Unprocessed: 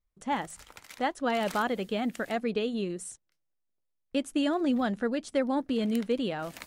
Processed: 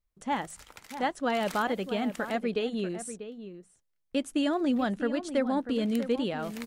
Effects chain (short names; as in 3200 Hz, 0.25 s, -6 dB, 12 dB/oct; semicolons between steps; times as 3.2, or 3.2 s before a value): outdoor echo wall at 110 m, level -11 dB